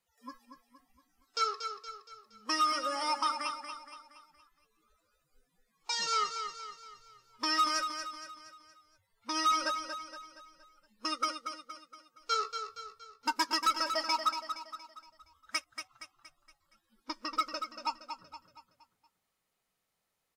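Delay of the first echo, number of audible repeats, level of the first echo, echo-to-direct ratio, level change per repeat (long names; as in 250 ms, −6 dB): 234 ms, 5, −8.0 dB, −7.0 dB, −6.5 dB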